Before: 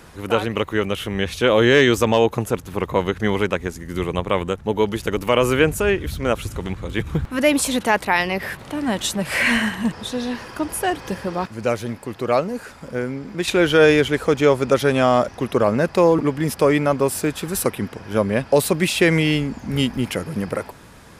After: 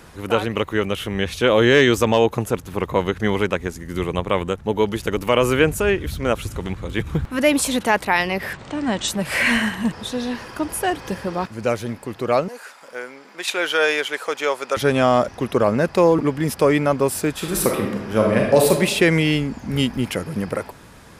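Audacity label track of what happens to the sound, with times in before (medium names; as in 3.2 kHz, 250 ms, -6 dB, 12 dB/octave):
8.530000	9.080000	steep low-pass 8.6 kHz 72 dB/octave
12.480000	14.770000	high-pass 690 Hz
17.340000	18.710000	reverb throw, RT60 0.94 s, DRR 0 dB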